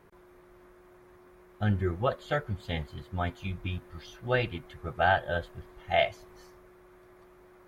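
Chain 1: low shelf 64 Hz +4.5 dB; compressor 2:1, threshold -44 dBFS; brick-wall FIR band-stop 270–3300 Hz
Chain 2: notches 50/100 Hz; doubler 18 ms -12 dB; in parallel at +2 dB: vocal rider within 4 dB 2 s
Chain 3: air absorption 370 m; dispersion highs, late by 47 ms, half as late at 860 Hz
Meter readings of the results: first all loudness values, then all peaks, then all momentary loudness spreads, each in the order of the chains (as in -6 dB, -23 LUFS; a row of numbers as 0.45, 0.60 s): -46.0, -24.0, -32.5 LUFS; -29.0, -5.0, -14.5 dBFS; 22, 13, 14 LU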